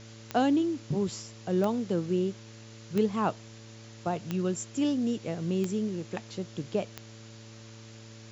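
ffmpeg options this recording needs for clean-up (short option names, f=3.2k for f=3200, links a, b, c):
-af "adeclick=t=4,bandreject=f=111.3:t=h:w=4,bandreject=f=222.6:t=h:w=4,bandreject=f=333.9:t=h:w=4,bandreject=f=445.2:t=h:w=4,bandreject=f=570:w=30,afwtdn=0.0032"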